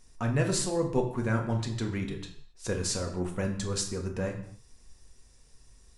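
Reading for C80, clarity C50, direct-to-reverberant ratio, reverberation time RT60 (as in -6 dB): 11.5 dB, 8.5 dB, 2.0 dB, no single decay rate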